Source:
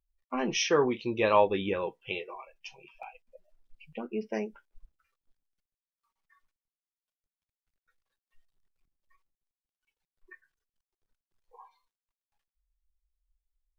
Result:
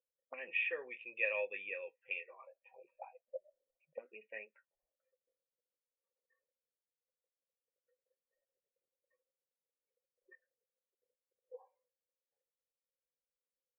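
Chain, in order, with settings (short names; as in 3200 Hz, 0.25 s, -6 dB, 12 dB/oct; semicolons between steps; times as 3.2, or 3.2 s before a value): auto-wah 470–2700 Hz, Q 4.8, up, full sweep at -33 dBFS; vocal tract filter e; gain +16.5 dB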